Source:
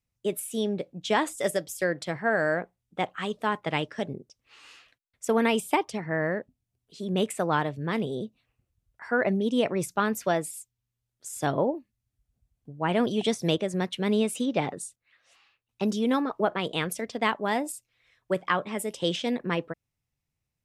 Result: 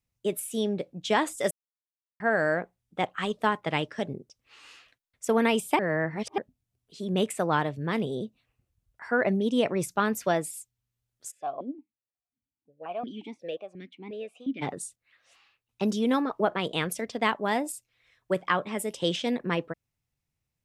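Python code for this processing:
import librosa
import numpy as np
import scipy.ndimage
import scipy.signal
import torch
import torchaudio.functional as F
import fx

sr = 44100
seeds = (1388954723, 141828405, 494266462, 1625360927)

y = fx.transient(x, sr, attack_db=4, sustain_db=-1, at=(3.03, 3.59))
y = fx.vowel_held(y, sr, hz=5.6, at=(11.3, 14.61), fade=0.02)
y = fx.edit(y, sr, fx.silence(start_s=1.51, length_s=0.69),
    fx.reverse_span(start_s=5.79, length_s=0.59), tone=tone)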